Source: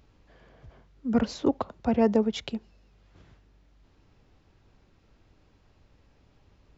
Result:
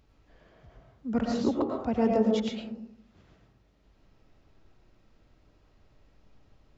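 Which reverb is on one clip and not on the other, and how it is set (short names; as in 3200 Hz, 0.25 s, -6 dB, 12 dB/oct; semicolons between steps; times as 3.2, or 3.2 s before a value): digital reverb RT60 0.7 s, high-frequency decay 0.3×, pre-delay 70 ms, DRR 0 dB; gain -4.5 dB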